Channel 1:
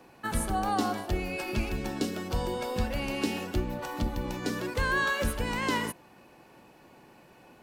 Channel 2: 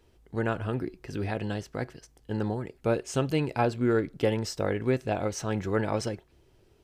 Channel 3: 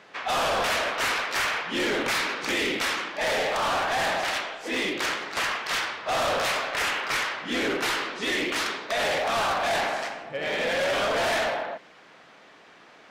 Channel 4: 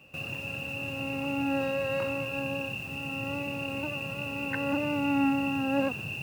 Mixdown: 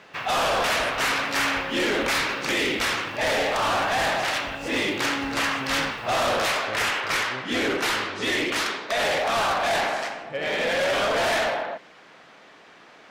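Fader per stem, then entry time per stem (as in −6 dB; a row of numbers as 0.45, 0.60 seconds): −15.0, −13.5, +2.0, −6.0 decibels; 0.45, 2.45, 0.00, 0.00 seconds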